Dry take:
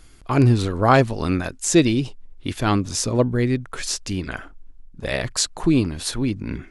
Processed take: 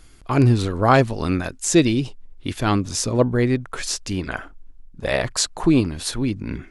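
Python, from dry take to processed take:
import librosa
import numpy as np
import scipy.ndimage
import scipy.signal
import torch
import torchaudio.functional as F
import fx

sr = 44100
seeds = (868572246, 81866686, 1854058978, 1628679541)

y = fx.dynamic_eq(x, sr, hz=830.0, q=0.73, threshold_db=-36.0, ratio=4.0, max_db=6, at=(3.21, 5.81))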